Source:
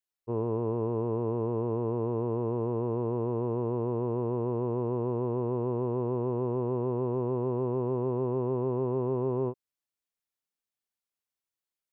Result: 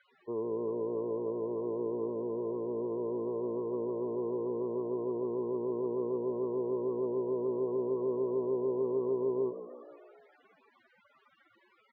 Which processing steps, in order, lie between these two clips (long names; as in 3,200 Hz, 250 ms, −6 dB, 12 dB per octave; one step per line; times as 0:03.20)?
linear delta modulator 64 kbit/s, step −44 dBFS
in parallel at +2 dB: downward compressor 6 to 1, threshold −45 dBFS, peak gain reduction 18 dB
0:02.07–0:02.78: on the sum: high-frequency loss of the air 230 metres
echo with shifted repeats 155 ms, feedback 65%, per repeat +58 Hz, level −12 dB
spectral peaks only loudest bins 32
loudspeaker in its box 240–2,400 Hz, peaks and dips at 400 Hz +7 dB, 770 Hz −9 dB, 1,200 Hz +7 dB
level −7 dB